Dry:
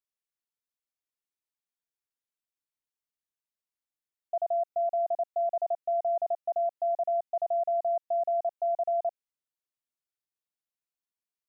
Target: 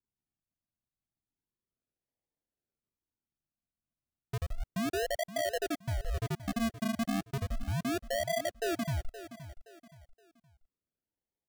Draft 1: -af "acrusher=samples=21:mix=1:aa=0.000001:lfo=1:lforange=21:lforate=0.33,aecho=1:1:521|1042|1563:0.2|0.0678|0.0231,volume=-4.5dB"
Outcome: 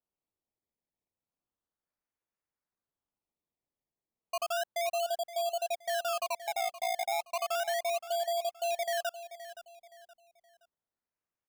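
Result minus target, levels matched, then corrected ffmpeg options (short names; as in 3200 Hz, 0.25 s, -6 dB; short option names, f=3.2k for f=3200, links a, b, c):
decimation with a swept rate: distortion -22 dB
-af "acrusher=samples=66:mix=1:aa=0.000001:lfo=1:lforange=66:lforate=0.33,aecho=1:1:521|1042|1563:0.2|0.0678|0.0231,volume=-4.5dB"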